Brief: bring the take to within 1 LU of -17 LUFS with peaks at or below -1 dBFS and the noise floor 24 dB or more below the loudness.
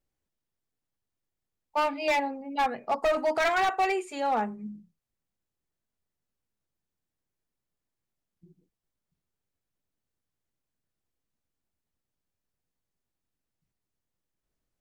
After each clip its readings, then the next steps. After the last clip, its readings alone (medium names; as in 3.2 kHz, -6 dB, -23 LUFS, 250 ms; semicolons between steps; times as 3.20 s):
clipped samples 1.0%; clipping level -21.0 dBFS; loudness -27.5 LUFS; peak level -21.0 dBFS; loudness target -17.0 LUFS
-> clip repair -21 dBFS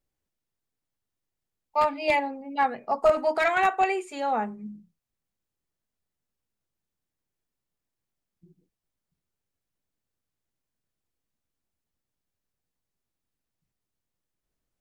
clipped samples 0.0%; loudness -25.5 LUFS; peak level -12.0 dBFS; loudness target -17.0 LUFS
-> trim +8.5 dB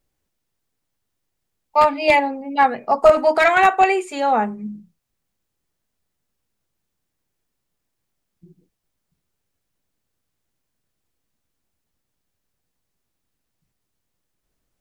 loudness -17.0 LUFS; peak level -3.5 dBFS; noise floor -78 dBFS